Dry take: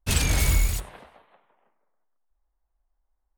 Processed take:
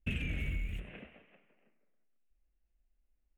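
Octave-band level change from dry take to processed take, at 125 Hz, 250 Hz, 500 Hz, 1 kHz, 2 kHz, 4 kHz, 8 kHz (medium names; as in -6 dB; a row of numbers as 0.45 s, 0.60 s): -13.0 dB, -8.0 dB, -14.5 dB, -23.5 dB, -10.5 dB, -18.0 dB, -37.0 dB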